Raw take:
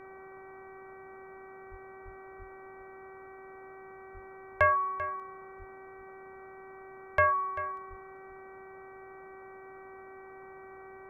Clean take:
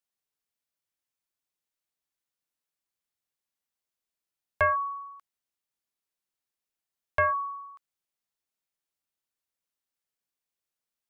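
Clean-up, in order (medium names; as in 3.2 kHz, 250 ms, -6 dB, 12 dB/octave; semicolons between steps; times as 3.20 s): de-hum 382.9 Hz, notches 6; de-plosive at 1.70/2.04/2.38/4.13/5.58/7.89 s; noise print and reduce 30 dB; inverse comb 391 ms -14 dB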